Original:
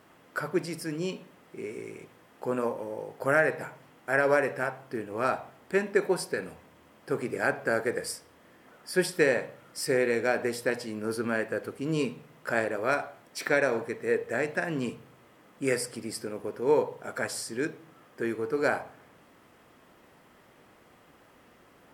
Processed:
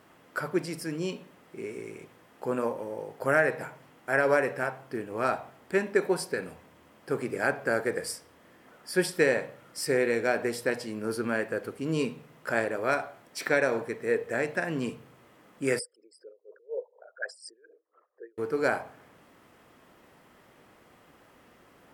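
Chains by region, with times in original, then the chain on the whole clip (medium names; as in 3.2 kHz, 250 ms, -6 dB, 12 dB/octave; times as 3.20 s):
15.79–18.38 s: resonances exaggerated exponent 3 + high-pass 580 Hz 24 dB/octave + logarithmic tremolo 4.1 Hz, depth 22 dB
whole clip: none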